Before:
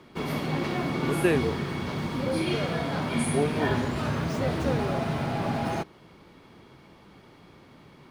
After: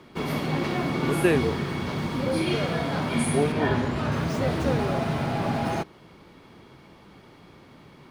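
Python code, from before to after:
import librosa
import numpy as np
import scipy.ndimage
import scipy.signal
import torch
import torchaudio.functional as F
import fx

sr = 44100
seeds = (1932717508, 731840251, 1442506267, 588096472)

y = fx.high_shelf(x, sr, hz=6100.0, db=-9.0, at=(3.52, 4.12))
y = F.gain(torch.from_numpy(y), 2.0).numpy()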